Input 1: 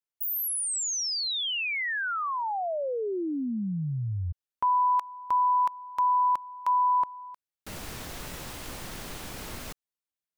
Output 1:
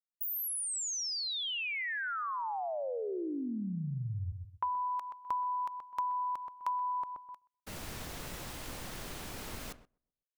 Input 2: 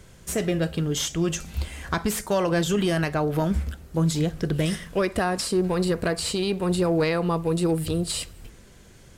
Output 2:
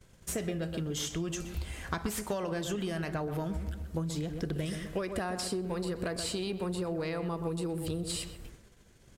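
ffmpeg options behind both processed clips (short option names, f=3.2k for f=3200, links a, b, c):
-filter_complex "[0:a]asplit=2[a][b];[b]adelay=127,lowpass=f=1.4k:p=1,volume=-9dB,asplit=2[c][d];[d]adelay=127,lowpass=f=1.4k:p=1,volume=0.38,asplit=2[e][f];[f]adelay=127,lowpass=f=1.4k:p=1,volume=0.38,asplit=2[g][h];[h]adelay=127,lowpass=f=1.4k:p=1,volume=0.38[i];[a][c][e][g][i]amix=inputs=5:normalize=0,agate=range=-20dB:threshold=-44dB:ratio=3:release=124:detection=peak,acompressor=threshold=-30dB:ratio=6:attack=48:release=183:knee=6:detection=peak,volume=-4dB"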